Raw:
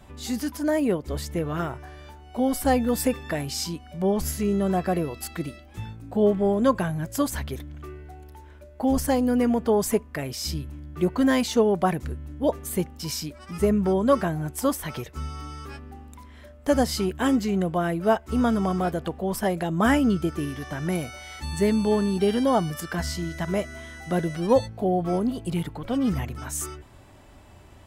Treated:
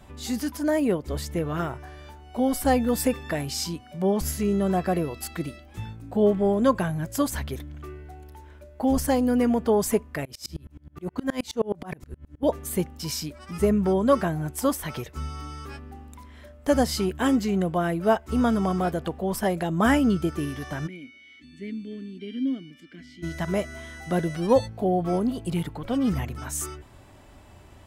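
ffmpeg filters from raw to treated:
ffmpeg -i in.wav -filter_complex "[0:a]asettb=1/sr,asplit=3[link_01][link_02][link_03];[link_01]atrim=end=3.804[link_04];[link_02]atrim=start=3.8:end=4.21,asetpts=PTS-STARTPTS,afade=type=in:duration=0.004:curve=qsin,afade=type=out:start_time=0.406:duration=0.004:curve=qsin,highpass=frequency=100:width=0.5412,highpass=frequency=100:width=1.3066[link_05];[link_03]atrim=start=4.206[link_06];[link_04][link_05]acrossfade=duration=0.004:curve1=hsin:curve2=qsin[link_07];[link_07][link_06]acrossfade=duration=0.004:curve1=qsin:curve2=hsin,asettb=1/sr,asplit=3[link_08][link_09][link_10];[link_08]atrim=end=10.254[link_11];[link_09]atrim=start=10.25:end=12.43,asetpts=PTS-STARTPTS,afade=type=in:duration=0.004:curve=qsin,afade=type=out:start_time=2.176:duration=0.004:curve=qsin,aeval=exprs='val(0)*pow(10,-31*if(lt(mod(-9.5*n/s,1),2*abs(-9.5)/1000),1-mod(-9.5*n/s,1)/(2*abs(-9.5)/1000),(mod(-9.5*n/s,1)-2*abs(-9.5)/1000)/(1-2*abs(-9.5)/1000))/20)':channel_layout=same[link_12];[link_10]atrim=start=12.426[link_13];[link_11][link_12]acrossfade=duration=0.004:curve1=hsin:curve2=qsin[link_14];[link_14][link_13]acrossfade=duration=0.004:curve1=qsin:curve2=hsin,asplit=3[link_15][link_16][link_17];[link_15]afade=type=out:start_time=20.86:duration=0.02[link_18];[link_16]asplit=3[link_19][link_20][link_21];[link_19]bandpass=frequency=270:width_type=q:width=8,volume=0dB[link_22];[link_20]bandpass=frequency=2290:width_type=q:width=8,volume=-6dB[link_23];[link_21]bandpass=frequency=3010:width_type=q:width=8,volume=-9dB[link_24];[link_22][link_23][link_24]amix=inputs=3:normalize=0,afade=type=in:start_time=20.86:duration=0.02,afade=type=out:start_time=23.22:duration=0.02[link_25];[link_17]afade=type=in:start_time=23.22:duration=0.02[link_26];[link_18][link_25][link_26]amix=inputs=3:normalize=0" out.wav

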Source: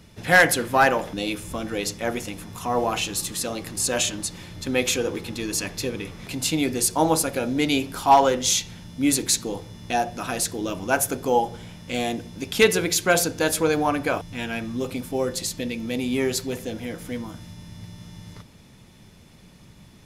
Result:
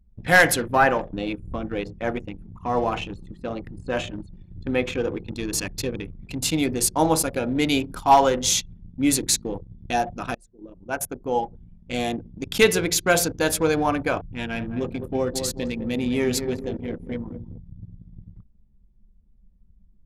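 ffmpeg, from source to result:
ffmpeg -i in.wav -filter_complex "[0:a]asettb=1/sr,asplit=3[link_01][link_02][link_03];[link_01]atrim=end=0.754[link_04];[link_02]atrim=start=0.75:end=5.28,asetpts=PTS-STARTPTS,afade=type=in:duration=0.004:curve=qsin,afade=type=out:start_time=4.526:duration=0.004:curve=qsin,acrossover=split=2800[link_05][link_06];[link_06]acompressor=threshold=-41dB:ratio=4:attack=1:release=60[link_07];[link_05][link_07]amix=inputs=2:normalize=0[link_08];[link_03]atrim=start=5.276[link_09];[link_04][link_08]acrossfade=duration=0.004:curve1=hsin:curve2=qsin[link_10];[link_10][link_09]acrossfade=duration=0.004:curve1=qsin:curve2=hsin,asettb=1/sr,asplit=3[link_11][link_12][link_13];[link_11]atrim=end=14.324[link_14];[link_12]atrim=start=14.32:end=17.58,asetpts=PTS-STARTPTS,afade=type=in:duration=0.004:curve=qsin,afade=type=out:start_time=3.256:duration=0.004:curve=qsin,asplit=2[link_15][link_16];[link_16]adelay=208,lowpass=frequency=2200:poles=1,volume=-7dB,asplit=2[link_17][link_18];[link_18]adelay=208,lowpass=frequency=2200:poles=1,volume=0.51,asplit=2[link_19][link_20];[link_20]adelay=208,lowpass=frequency=2200:poles=1,volume=0.51,asplit=2[link_21][link_22];[link_22]adelay=208,lowpass=frequency=2200:poles=1,volume=0.51,asplit=2[link_23][link_24];[link_24]adelay=208,lowpass=frequency=2200:poles=1,volume=0.51,asplit=2[link_25][link_26];[link_26]adelay=208,lowpass=frequency=2200:poles=1,volume=0.51[link_27];[link_15][link_17][link_19][link_21][link_23][link_25][link_27]amix=inputs=7:normalize=0,atrim=end_sample=143766[link_28];[link_13]atrim=start=17.576[link_29];[link_14][link_28]acrossfade=duration=0.004:curve1=hsin:curve2=qsin[link_30];[link_30][link_29]acrossfade=duration=0.004:curve1=qsin:curve2=hsin,asplit=2[link_31][link_32];[link_31]atrim=end=10.35,asetpts=PTS-STARTPTS,afade=type=out:start_time=10.346:duration=0.004:curve=hsin:silence=0.188365[link_33];[link_32]atrim=start=10.35,asetpts=PTS-STARTPTS,afade=type=in:duration=1.72:silence=0.188365[link_34];[link_33][link_34]concat=n=2:v=0:a=1,lowshelf=frequency=64:gain=9,anlmdn=39.8" out.wav

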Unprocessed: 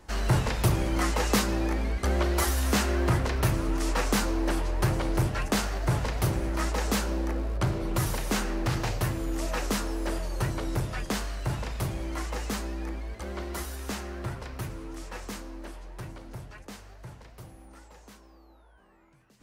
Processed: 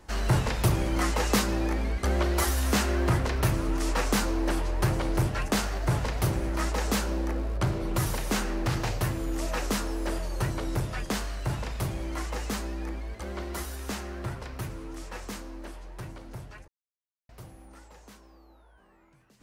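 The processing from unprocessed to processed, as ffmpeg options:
ffmpeg -i in.wav -filter_complex "[0:a]asplit=3[link_01][link_02][link_03];[link_01]atrim=end=16.68,asetpts=PTS-STARTPTS,afade=type=out:start_time=16.676:duration=0.004:curve=hsin[link_04];[link_02]atrim=start=16.68:end=17.29,asetpts=PTS-STARTPTS,volume=0[link_05];[link_03]atrim=start=17.29,asetpts=PTS-STARTPTS,afade=type=in:duration=0.004:curve=hsin[link_06];[link_04][link_05][link_06]concat=n=3:v=0:a=1" out.wav

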